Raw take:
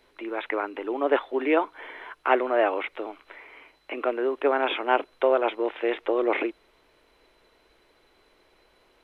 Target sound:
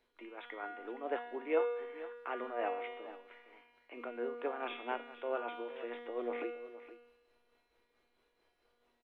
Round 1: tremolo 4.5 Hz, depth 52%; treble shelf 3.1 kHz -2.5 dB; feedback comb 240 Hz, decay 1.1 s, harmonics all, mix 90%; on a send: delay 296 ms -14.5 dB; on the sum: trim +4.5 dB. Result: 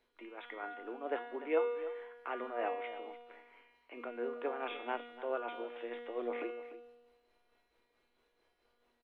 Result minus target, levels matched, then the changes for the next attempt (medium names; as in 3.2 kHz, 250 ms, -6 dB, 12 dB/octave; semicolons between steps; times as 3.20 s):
echo 172 ms early
change: delay 468 ms -14.5 dB